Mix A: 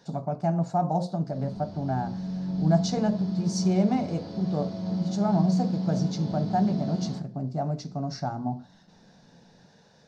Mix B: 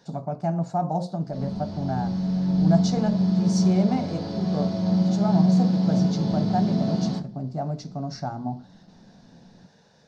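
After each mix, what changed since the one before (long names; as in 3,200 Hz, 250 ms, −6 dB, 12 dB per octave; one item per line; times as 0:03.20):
background +7.5 dB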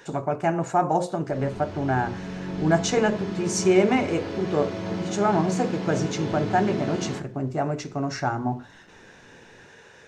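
speech +6.5 dB
master: add drawn EQ curve 110 Hz 0 dB, 180 Hz −12 dB, 380 Hz +7 dB, 690 Hz −4 dB, 1,000 Hz +4 dB, 1,800 Hz +10 dB, 2,700 Hz +11 dB, 4,600 Hz −8 dB, 7,300 Hz +7 dB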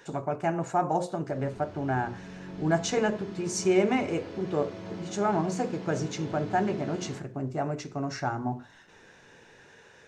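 speech −4.5 dB
background −9.5 dB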